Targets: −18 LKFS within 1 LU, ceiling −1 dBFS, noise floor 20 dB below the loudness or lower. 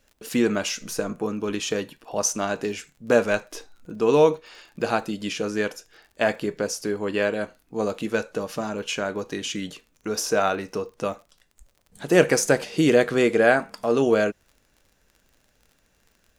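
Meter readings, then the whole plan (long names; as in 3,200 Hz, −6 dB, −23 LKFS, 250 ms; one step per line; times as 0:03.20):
crackle rate 34 per second; integrated loudness −24.0 LKFS; sample peak −4.0 dBFS; target loudness −18.0 LKFS
→ click removal
level +6 dB
brickwall limiter −1 dBFS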